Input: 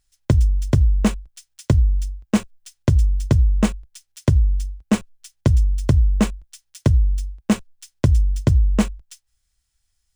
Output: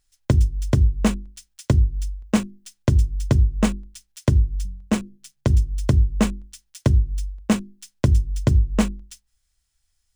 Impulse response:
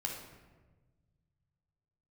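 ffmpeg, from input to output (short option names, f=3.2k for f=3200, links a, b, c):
-filter_complex "[0:a]bandreject=f=50:t=h:w=6,bandreject=f=100:t=h:w=6,bandreject=f=150:t=h:w=6,bandreject=f=200:t=h:w=6,bandreject=f=250:t=h:w=6,bandreject=f=300:t=h:w=6,bandreject=f=350:t=h:w=6,bandreject=f=400:t=h:w=6,asettb=1/sr,asplit=3[a][b][c];[a]atrim=end=4.654[d];[b]atrim=start=4.65:end=5.5,asetpts=PTS-STARTPTS,afade=t=in:d=0.004:c=qsin,afade=t=out:st=0.846:d=0.004:c=qsin,tremolo=f=140:d=0.4[e];[c]atrim=start=5.496[f];[d][e]acrossfade=d=0.004:c1=hsin:c2=qsin[g];[g][f]acrossfade=d=0.004:c1=qsin:c2=hsin"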